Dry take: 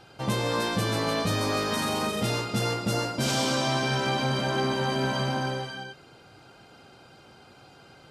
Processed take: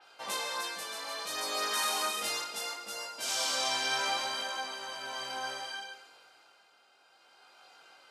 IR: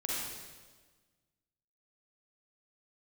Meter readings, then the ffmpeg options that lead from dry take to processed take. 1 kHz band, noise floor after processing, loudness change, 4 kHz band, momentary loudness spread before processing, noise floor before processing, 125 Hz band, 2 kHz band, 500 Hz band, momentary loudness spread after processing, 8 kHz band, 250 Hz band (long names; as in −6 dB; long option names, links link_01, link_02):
−6.0 dB, −64 dBFS, −6.0 dB, −2.5 dB, 5 LU, −53 dBFS, −35.0 dB, −4.5 dB, −13.0 dB, 10 LU, 0.0 dB, −23.0 dB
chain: -filter_complex "[0:a]highpass=780,flanger=delay=19:depth=4.4:speed=0.66,tremolo=f=0.51:d=0.59,asplit=2[link_01][link_02];[1:a]atrim=start_sample=2205[link_03];[link_02][link_03]afir=irnorm=-1:irlink=0,volume=-16dB[link_04];[link_01][link_04]amix=inputs=2:normalize=0,adynamicequalizer=threshold=0.00398:dfrequency=4600:dqfactor=0.7:tfrequency=4600:tqfactor=0.7:attack=5:release=100:ratio=0.375:range=3:mode=boostabove:tftype=highshelf"